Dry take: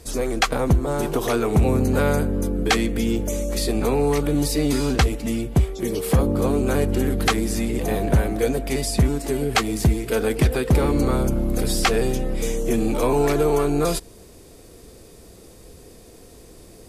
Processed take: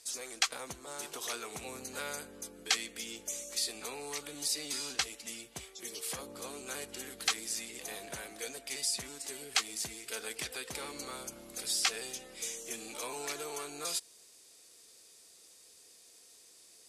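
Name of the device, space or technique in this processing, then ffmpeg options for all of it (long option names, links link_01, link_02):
piezo pickup straight into a mixer: -af "lowpass=7100,aderivative"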